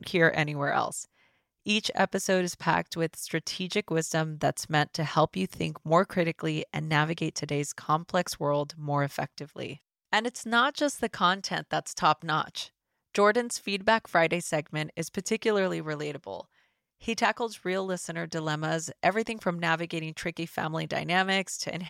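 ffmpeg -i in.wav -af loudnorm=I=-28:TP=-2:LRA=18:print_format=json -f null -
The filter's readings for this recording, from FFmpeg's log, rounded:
"input_i" : "-28.5",
"input_tp" : "-10.2",
"input_lra" : "3.3",
"input_thresh" : "-38.8",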